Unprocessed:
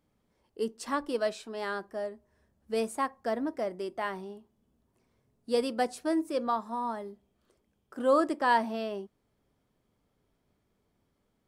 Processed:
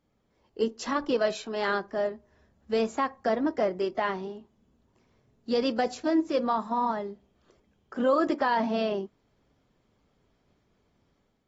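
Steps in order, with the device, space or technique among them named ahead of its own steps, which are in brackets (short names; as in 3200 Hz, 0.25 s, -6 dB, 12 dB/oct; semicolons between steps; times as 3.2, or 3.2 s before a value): low-bitrate web radio (AGC gain up to 6 dB; limiter -17 dBFS, peak gain reduction 9.5 dB; AAC 24 kbps 44100 Hz)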